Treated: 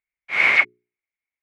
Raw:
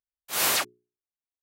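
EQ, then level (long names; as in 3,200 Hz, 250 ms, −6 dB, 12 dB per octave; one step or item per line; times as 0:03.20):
low-pass with resonance 2,200 Hz, resonance Q 15
0.0 dB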